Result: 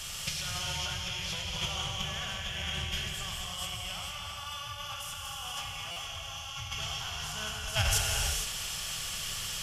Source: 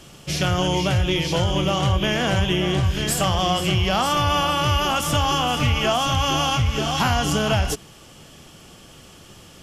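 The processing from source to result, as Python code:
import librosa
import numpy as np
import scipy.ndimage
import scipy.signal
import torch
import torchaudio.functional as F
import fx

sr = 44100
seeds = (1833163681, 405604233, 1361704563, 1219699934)

y = fx.tone_stack(x, sr, knobs='10-0-10')
y = y + 10.0 ** (-7.5 / 20.0) * np.pad(y, (int(229 * sr / 1000.0), 0))[:len(y)]
y = fx.over_compress(y, sr, threshold_db=-36.0, ratio=-0.5)
y = fx.rev_gated(y, sr, seeds[0], gate_ms=500, shape='flat', drr_db=-1.0)
y = fx.buffer_glitch(y, sr, at_s=(5.91,), block=256, repeats=8)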